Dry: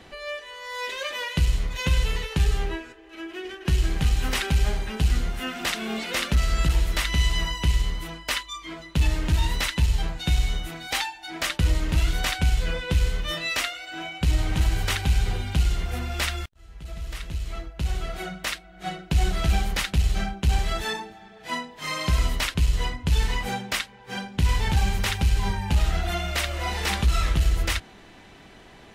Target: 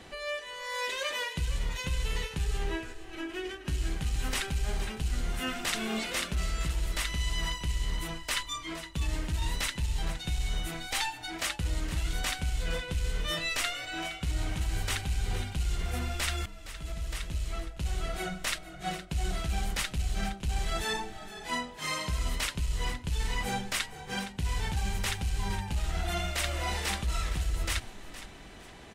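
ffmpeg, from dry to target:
-filter_complex "[0:a]equalizer=f=8600:t=o:w=0.89:g=5.5,areverse,acompressor=threshold=0.0501:ratio=6,areverse,asplit=4[s0][s1][s2][s3];[s1]adelay=465,afreqshift=-43,volume=0.211[s4];[s2]adelay=930,afreqshift=-86,volume=0.0653[s5];[s3]adelay=1395,afreqshift=-129,volume=0.0204[s6];[s0][s4][s5][s6]amix=inputs=4:normalize=0,volume=0.841"

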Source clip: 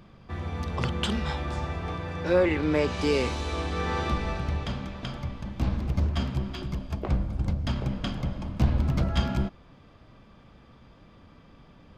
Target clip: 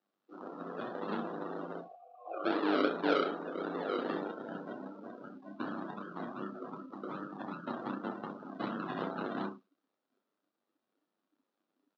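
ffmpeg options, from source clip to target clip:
-filter_complex "[0:a]asplit=2[s0][s1];[s1]alimiter=limit=0.126:level=0:latency=1:release=230,volume=0.708[s2];[s0][s2]amix=inputs=2:normalize=0,highshelf=f=2500:g=-10,acrusher=samples=40:mix=1:aa=0.000001:lfo=1:lforange=24:lforate=2.6,tremolo=f=100:d=0.75,asettb=1/sr,asplit=3[s3][s4][s5];[s3]atrim=end=1.814[s6];[s4]atrim=start=1.81:end=2.44,asetpts=PTS-STARTPTS,afade=t=in:d=0.004:c=qsin,afade=t=out:st=0.626:d=0.004:c=qsin,asplit=3[s7][s8][s9];[s7]bandpass=f=730:t=q:w=8,volume=1[s10];[s8]bandpass=f=1090:t=q:w=8,volume=0.501[s11];[s9]bandpass=f=2440:t=q:w=8,volume=0.355[s12];[s10][s11][s12]amix=inputs=3:normalize=0[s13];[s5]atrim=start=2.436[s14];[s6][s13]acrossfade=d=0.004:c1=hsin:c2=qsin[s15];[s15][s14]acrossfade=d=0.004:c1=qsin:c2=hsin,asettb=1/sr,asplit=3[s16][s17][s18];[s16]atrim=end=4.144[s19];[s17]atrim=start=4.14:end=4.89,asetpts=PTS-STARTPTS,afade=t=in:d=0.004:c=qsin,afade=t=out:st=0.746:d=0.004:c=qsin,bandreject=f=1200:w=9.1[s20];[s18]atrim=start=4.886[s21];[s19][s20]acrossfade=d=0.004:c1=hsin:c2=qsin[s22];[s22][s21]acrossfade=d=0.004:c1=qsin:c2=hsin,asettb=1/sr,asplit=3[s23][s24][s25];[s23]atrim=end=5.764[s26];[s24]atrim=start=5.76:end=6.39,asetpts=PTS-STARTPTS,afade=t=in:d=0.004:c=qsin,afade=t=out:st=0.626:d=0.004:c=qsin,acompressor=threshold=0.0891:ratio=6[s27];[s25]atrim=start=6.386[s28];[s26][s27]acrossfade=d=0.004:c1=hsin:c2=qsin[s29];[s29][s28]acrossfade=d=0.004:c1=qsin:c2=hsin,highpass=f=260:w=0.5412,highpass=f=260:w=1.3066,equalizer=f=1300:t=q:w=4:g=5,equalizer=f=2200:t=q:w=4:g=-4,equalizer=f=3800:t=q:w=4:g=3,lowpass=f=5500:w=0.5412,lowpass=f=5500:w=1.3066,aecho=1:1:30|64.5|104.2|149.8|202.3:0.631|0.398|0.251|0.158|0.1,afftdn=nr=25:nf=-36,acrossover=split=4300[s30][s31];[s31]acompressor=threshold=0.00447:ratio=4:attack=1:release=60[s32];[s30][s32]amix=inputs=2:normalize=0,volume=0.531"

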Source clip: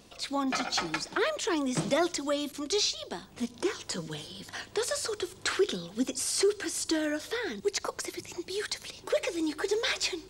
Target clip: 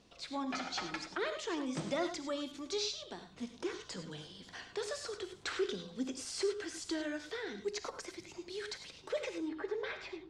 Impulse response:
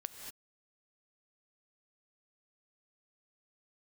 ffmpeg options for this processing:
-filter_complex "[0:a]asetnsamples=n=441:p=0,asendcmd='9.38 lowpass f 2000',lowpass=6300[s0];[1:a]atrim=start_sample=2205,afade=t=out:st=0.25:d=0.01,atrim=end_sample=11466,asetrate=79380,aresample=44100[s1];[s0][s1]afir=irnorm=-1:irlink=0"

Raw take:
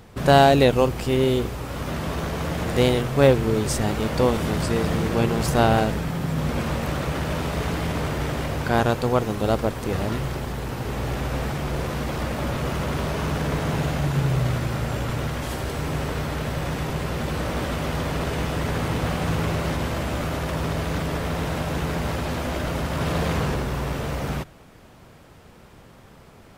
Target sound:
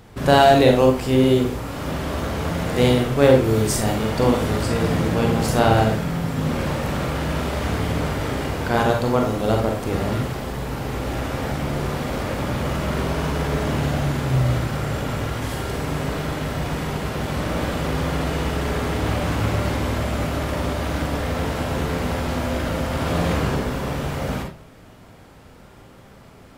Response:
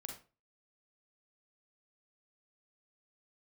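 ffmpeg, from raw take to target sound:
-filter_complex "[0:a]asettb=1/sr,asplit=3[s0][s1][s2];[s0]atrim=end=3.444[s3];[s1]atrim=start=3.44:end=3.95,asetpts=PTS-STARTPTS,afade=t=in:d=0.004:c=qsin,afade=t=out:st=0.506:d=0.004:c=qsin,highshelf=f=9300:g=8[s4];[s2]atrim=start=3.946[s5];[s3][s4]acrossfade=d=0.004:c1=hsin:c2=qsin[s6];[s6][s5]acrossfade=d=0.004:c1=qsin:c2=hsin[s7];[1:a]atrim=start_sample=2205[s8];[s7][s8]afir=irnorm=-1:irlink=0,volume=1.88"

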